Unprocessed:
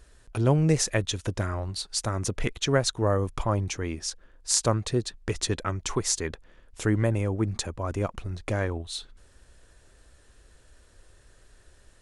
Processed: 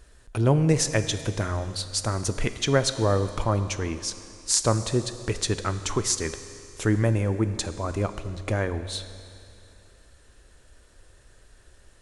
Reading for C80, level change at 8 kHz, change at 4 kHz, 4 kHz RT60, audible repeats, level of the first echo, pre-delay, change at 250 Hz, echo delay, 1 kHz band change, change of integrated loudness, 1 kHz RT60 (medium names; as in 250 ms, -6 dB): 12.5 dB, +2.0 dB, +2.0 dB, 2.6 s, no echo, no echo, 11 ms, +2.0 dB, no echo, +2.0 dB, +2.0 dB, 2.6 s